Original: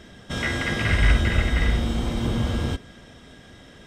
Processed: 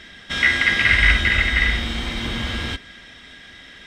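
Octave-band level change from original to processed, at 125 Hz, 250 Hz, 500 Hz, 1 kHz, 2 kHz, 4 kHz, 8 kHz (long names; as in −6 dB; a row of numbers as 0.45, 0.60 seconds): −4.0, −3.5, −4.0, +2.0, +11.0, +9.0, +2.0 decibels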